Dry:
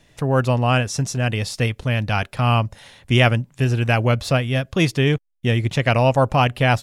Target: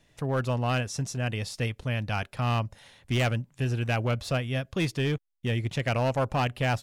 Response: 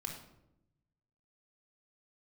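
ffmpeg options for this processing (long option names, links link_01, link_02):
-af "asoftclip=type=hard:threshold=-12dB,volume=-8.5dB"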